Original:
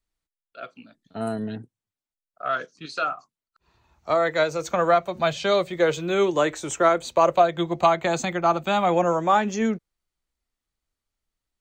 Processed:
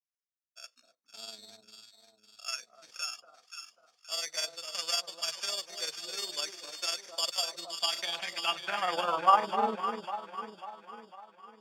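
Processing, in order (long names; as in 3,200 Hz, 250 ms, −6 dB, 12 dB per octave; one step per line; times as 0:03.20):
high-shelf EQ 4,500 Hz −8.5 dB
decimation without filtering 11×
band-pass filter sweep 5,300 Hz → 590 Hz, 0:07.67–0:09.93
delay that swaps between a low-pass and a high-pass 265 ms, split 1,000 Hz, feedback 69%, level −5.5 dB
granular cloud 82 ms, spray 20 ms, pitch spread up and down by 0 semitones
level +3.5 dB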